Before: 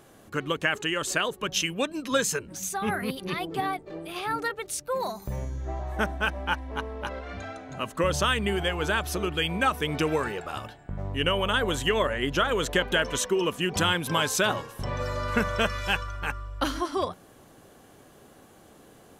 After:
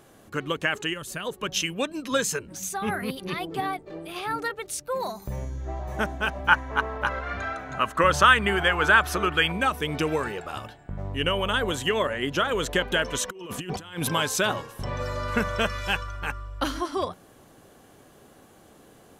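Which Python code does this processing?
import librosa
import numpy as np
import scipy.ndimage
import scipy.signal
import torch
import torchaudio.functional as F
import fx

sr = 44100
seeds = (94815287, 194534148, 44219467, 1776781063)

y = fx.spec_box(x, sr, start_s=0.93, length_s=0.33, low_hz=240.0, high_hz=9000.0, gain_db=-9)
y = fx.echo_throw(y, sr, start_s=5.3, length_s=0.53, ms=570, feedback_pct=60, wet_db=-4.0)
y = fx.peak_eq(y, sr, hz=1400.0, db=11.5, octaves=1.5, at=(6.48, 9.52))
y = fx.highpass(y, sr, hz=85.0, slope=12, at=(11.71, 12.54))
y = fx.over_compress(y, sr, threshold_db=-32.0, ratio=-0.5, at=(13.28, 14.09))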